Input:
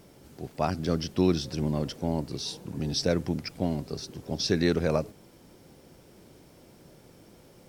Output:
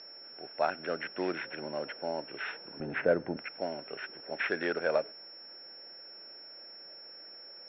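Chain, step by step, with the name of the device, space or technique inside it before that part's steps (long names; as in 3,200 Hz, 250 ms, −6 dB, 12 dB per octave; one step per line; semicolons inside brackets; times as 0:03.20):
toy sound module (linearly interpolated sample-rate reduction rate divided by 6×; switching amplifier with a slow clock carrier 5,400 Hz; loudspeaker in its box 580–3,700 Hz, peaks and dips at 590 Hz +4 dB, 1,100 Hz −6 dB, 1,500 Hz +9 dB, 2,600 Hz +4 dB)
0:02.80–0:03.37: spectral tilt −4 dB per octave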